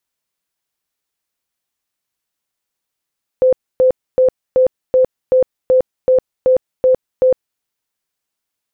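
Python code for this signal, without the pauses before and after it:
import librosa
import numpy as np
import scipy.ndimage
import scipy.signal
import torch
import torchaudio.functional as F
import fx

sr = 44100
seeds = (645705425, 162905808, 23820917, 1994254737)

y = fx.tone_burst(sr, hz=514.0, cycles=55, every_s=0.38, bursts=11, level_db=-7.5)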